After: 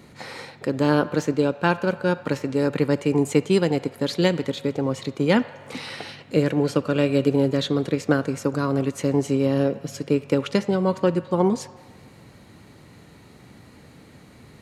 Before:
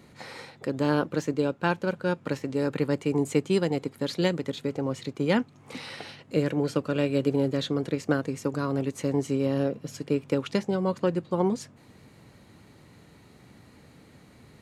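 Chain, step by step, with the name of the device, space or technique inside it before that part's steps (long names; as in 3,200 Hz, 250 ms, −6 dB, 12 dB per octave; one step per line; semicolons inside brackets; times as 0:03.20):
filtered reverb send (on a send: high-pass filter 540 Hz 24 dB per octave + low-pass filter 4,000 Hz + convolution reverb RT60 1.5 s, pre-delay 44 ms, DRR 14.5 dB)
on the sum: level +5 dB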